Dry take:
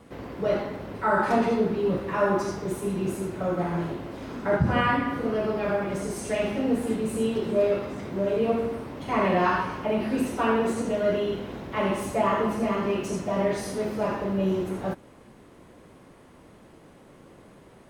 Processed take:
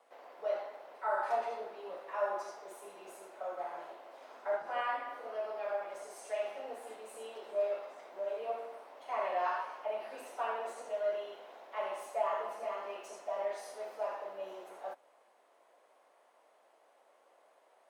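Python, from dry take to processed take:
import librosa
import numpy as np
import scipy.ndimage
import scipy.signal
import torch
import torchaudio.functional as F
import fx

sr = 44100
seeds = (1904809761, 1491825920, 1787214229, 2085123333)

y = fx.octave_divider(x, sr, octaves=1, level_db=-6.0)
y = fx.ladder_highpass(y, sr, hz=570.0, resonance_pct=50)
y = y * 10.0 ** (-4.5 / 20.0)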